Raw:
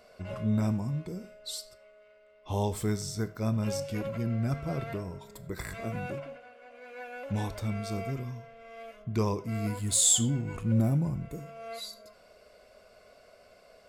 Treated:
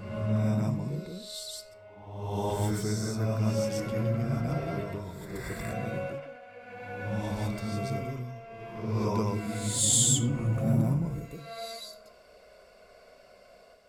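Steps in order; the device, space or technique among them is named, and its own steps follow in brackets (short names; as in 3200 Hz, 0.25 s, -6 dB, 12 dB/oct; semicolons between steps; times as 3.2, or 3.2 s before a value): reverse reverb (reverse; reverb RT60 1.2 s, pre-delay 0.114 s, DRR -3 dB; reverse); gain -3 dB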